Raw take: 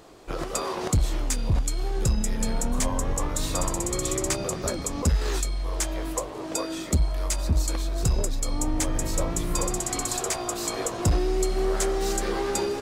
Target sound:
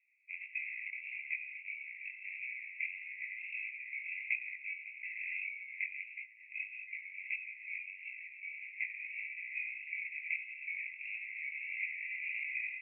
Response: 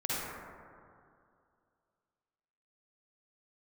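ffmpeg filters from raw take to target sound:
-af "aeval=exprs='0.158*(cos(1*acos(clip(val(0)/0.158,-1,1)))-cos(1*PI/2))+0.0178*(cos(7*acos(clip(val(0)/0.158,-1,1)))-cos(7*PI/2))':channel_layout=same,asuperpass=centerf=2300:order=12:qfactor=3.7,flanger=delay=16:depth=6.7:speed=1.6,volume=9.5dB"

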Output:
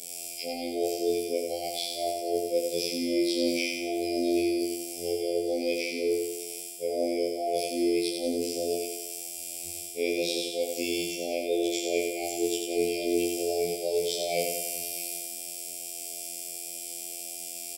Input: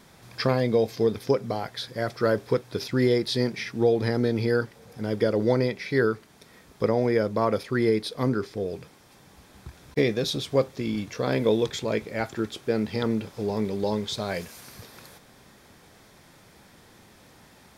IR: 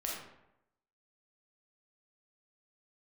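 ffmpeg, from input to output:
-filter_complex "[0:a]aemphasis=mode=production:type=riaa,acrossover=split=3100[link_01][link_02];[link_02]acompressor=threshold=-40dB:ratio=4:attack=1:release=60[link_03];[link_01][link_03]amix=inputs=2:normalize=0,equalizer=frequency=125:width_type=o:width=1:gain=-8,equalizer=frequency=500:width_type=o:width=1:gain=4,equalizer=frequency=1000:width_type=o:width=1:gain=7,equalizer=frequency=8000:width_type=o:width=1:gain=10,areverse,acompressor=threshold=-28dB:ratio=20,areverse,flanger=delay=16:depth=2.6:speed=0.28,afftfilt=real='hypot(re,im)*cos(PI*b)':imag='0':win_size=2048:overlap=0.75,asuperstop=centerf=1300:order=20:qfactor=0.89,asplit=2[link_04][link_05];[link_05]adelay=12,volume=-5dB[link_06];[link_04][link_06]amix=inputs=2:normalize=0,asplit=2[link_07][link_08];[link_08]aecho=0:1:90|180|270|360|450|540|630:0.596|0.328|0.18|0.0991|0.0545|0.03|0.0165[link_09];[link_07][link_09]amix=inputs=2:normalize=0,afftfilt=real='re*2*eq(mod(b,4),0)':imag='im*2*eq(mod(b,4),0)':win_size=2048:overlap=0.75,volume=4.5dB"

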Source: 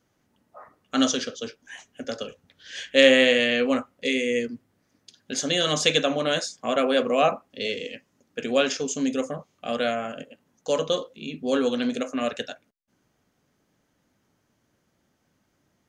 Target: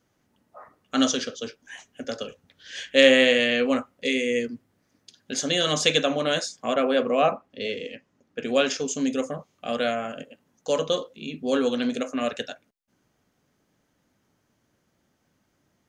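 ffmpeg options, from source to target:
ffmpeg -i in.wav -filter_complex "[0:a]asettb=1/sr,asplit=3[link_01][link_02][link_03];[link_01]atrim=end=6.744[link_04];[link_02]atrim=start=6.74:end=8.46,asetpts=PTS-STARTPTS,afade=type=in:duration=0.004:curve=qsin,afade=type=out:start_time=1.716:duration=0.004:curve=qsin,lowpass=frequency=2900:poles=1[link_05];[link_03]atrim=start=8.456[link_06];[link_04][link_05]acrossfade=duration=0.004:curve1=hsin:curve2=qsin[link_07];[link_07][link_06]acrossfade=duration=0.004:curve1=qsin:curve2=hsin" out.wav

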